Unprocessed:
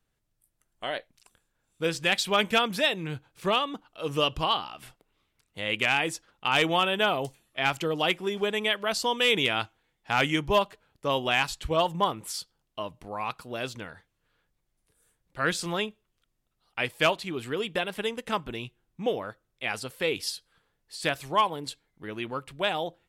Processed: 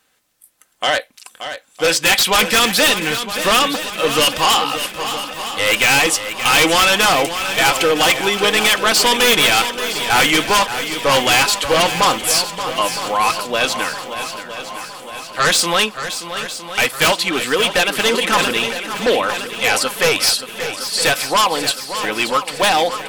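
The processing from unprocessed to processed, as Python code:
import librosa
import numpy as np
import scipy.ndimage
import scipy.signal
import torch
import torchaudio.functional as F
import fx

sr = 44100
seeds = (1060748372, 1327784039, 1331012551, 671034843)

p1 = fx.highpass(x, sr, hz=850.0, slope=6)
p2 = p1 + 0.36 * np.pad(p1, (int(3.9 * sr / 1000.0), 0))[:len(p1)]
p3 = fx.fold_sine(p2, sr, drive_db=18, ceiling_db=-10.0)
p4 = p2 + (p3 * 10.0 ** (-11.0 / 20.0))
p5 = fx.echo_swing(p4, sr, ms=962, ratio=1.5, feedback_pct=54, wet_db=-10.5)
p6 = fx.sustainer(p5, sr, db_per_s=49.0, at=(18.03, 19.78))
y = p6 * 10.0 ** (7.5 / 20.0)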